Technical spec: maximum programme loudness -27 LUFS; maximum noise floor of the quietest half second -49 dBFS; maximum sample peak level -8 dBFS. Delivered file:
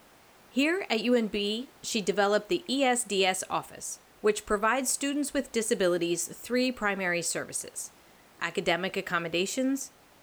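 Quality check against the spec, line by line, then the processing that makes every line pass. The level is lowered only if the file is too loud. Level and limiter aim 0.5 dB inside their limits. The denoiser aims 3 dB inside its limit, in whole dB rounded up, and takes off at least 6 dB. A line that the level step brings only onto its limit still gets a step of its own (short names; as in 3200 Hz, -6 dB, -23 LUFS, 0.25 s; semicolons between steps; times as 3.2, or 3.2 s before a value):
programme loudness -28.5 LUFS: OK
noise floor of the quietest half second -57 dBFS: OK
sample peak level -14.0 dBFS: OK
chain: none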